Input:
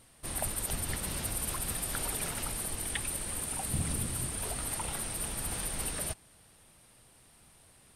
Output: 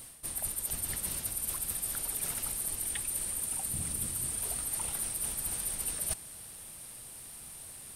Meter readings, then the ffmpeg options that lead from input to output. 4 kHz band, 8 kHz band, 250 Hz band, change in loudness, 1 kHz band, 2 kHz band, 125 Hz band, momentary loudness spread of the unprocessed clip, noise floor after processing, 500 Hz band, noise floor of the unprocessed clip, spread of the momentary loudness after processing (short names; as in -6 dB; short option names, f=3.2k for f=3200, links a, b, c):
-3.0 dB, +2.0 dB, -7.0 dB, +1.0 dB, -7.0 dB, -5.5 dB, -7.0 dB, 2 LU, -48 dBFS, -7.0 dB, -60 dBFS, 12 LU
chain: -af "aemphasis=mode=production:type=50kf,areverse,acompressor=threshold=-37dB:ratio=10,areverse,volume=5.5dB"